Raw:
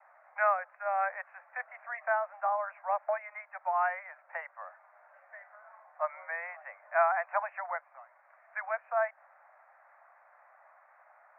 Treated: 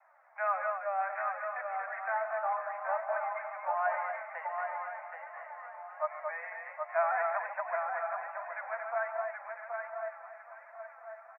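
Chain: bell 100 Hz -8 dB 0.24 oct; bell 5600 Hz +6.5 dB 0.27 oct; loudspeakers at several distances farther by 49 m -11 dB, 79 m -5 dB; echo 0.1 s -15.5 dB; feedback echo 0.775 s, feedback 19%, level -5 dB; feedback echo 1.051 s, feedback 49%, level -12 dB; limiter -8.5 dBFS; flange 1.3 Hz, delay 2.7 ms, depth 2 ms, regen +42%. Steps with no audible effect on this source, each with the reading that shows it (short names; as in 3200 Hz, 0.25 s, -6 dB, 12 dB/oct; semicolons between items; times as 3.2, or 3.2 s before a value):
bell 100 Hz: input band starts at 480 Hz; bell 5600 Hz: input band ends at 2400 Hz; limiter -8.5 dBFS: input peak -14.5 dBFS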